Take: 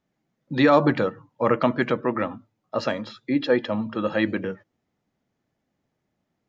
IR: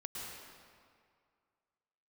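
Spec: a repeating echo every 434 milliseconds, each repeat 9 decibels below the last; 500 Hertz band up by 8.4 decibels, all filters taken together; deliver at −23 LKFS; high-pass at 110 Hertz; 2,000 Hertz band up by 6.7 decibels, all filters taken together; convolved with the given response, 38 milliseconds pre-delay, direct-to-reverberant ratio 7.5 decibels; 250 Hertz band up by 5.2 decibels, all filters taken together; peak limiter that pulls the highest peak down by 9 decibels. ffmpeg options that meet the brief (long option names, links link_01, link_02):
-filter_complex "[0:a]highpass=110,equalizer=frequency=250:width_type=o:gain=3.5,equalizer=frequency=500:width_type=o:gain=8.5,equalizer=frequency=2000:width_type=o:gain=7.5,alimiter=limit=-9.5dB:level=0:latency=1,aecho=1:1:434|868|1302|1736:0.355|0.124|0.0435|0.0152,asplit=2[link_01][link_02];[1:a]atrim=start_sample=2205,adelay=38[link_03];[link_02][link_03]afir=irnorm=-1:irlink=0,volume=-7dB[link_04];[link_01][link_04]amix=inputs=2:normalize=0,volume=-2.5dB"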